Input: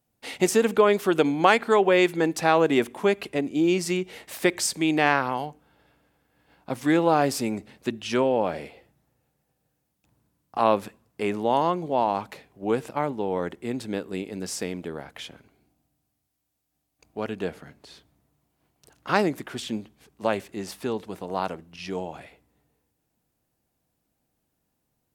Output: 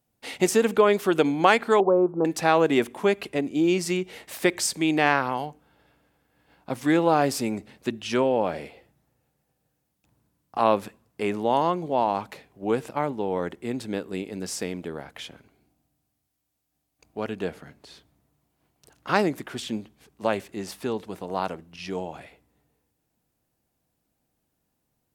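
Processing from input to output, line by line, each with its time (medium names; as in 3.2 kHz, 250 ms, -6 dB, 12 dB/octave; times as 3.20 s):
1.80–2.25 s: elliptic low-pass 1.2 kHz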